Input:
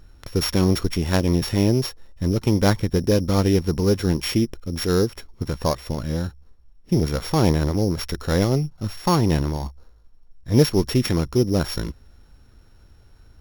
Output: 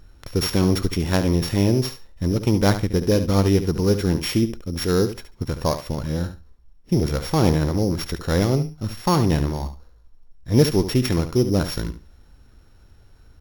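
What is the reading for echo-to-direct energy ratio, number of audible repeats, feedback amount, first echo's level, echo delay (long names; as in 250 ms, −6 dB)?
−11.0 dB, 2, 17%, −11.0 dB, 71 ms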